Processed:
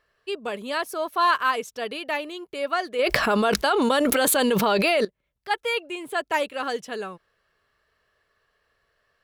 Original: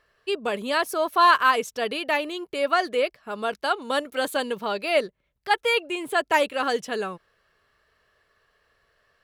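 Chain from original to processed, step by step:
0:02.99–0:05.05: envelope flattener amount 100%
level −3.5 dB

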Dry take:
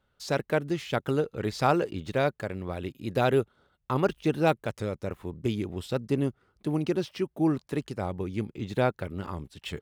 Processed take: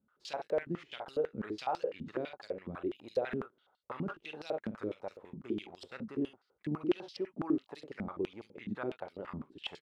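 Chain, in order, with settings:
in parallel at +0.5 dB: downward compressor, threshold −33 dBFS, peak gain reduction 14.5 dB
on the sum: ambience of single reflections 47 ms −10 dB, 66 ms −14 dB
brickwall limiter −16 dBFS, peak gain reduction 8.5 dB
band-pass on a step sequencer 12 Hz 220–4,600 Hz

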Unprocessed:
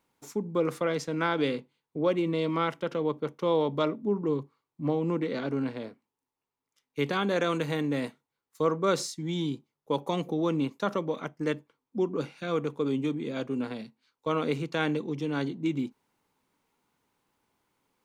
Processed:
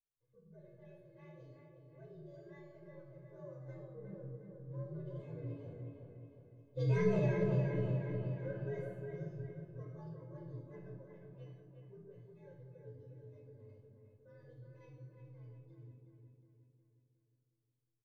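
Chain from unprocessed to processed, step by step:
partials spread apart or drawn together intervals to 122%
source passing by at 0:07.00, 10 m/s, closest 2.3 metres
RIAA equalisation playback
comb filter 1.9 ms, depth 55%
on a send: delay with a low-pass on its return 361 ms, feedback 50%, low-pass 2,800 Hz, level −4.5 dB
on the sum: rectangular room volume 4,000 cubic metres, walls furnished, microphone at 5 metres
in parallel at +2 dB: downward compressor, threshold −25 dBFS, peak gain reduction 12 dB
on the sum: high-shelf EQ 8,900 Hz −5.5 dB
notch filter 1,400 Hz, Q 6.8
tuned comb filter 430 Hz, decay 0.56 s, mix 90%
level +1 dB

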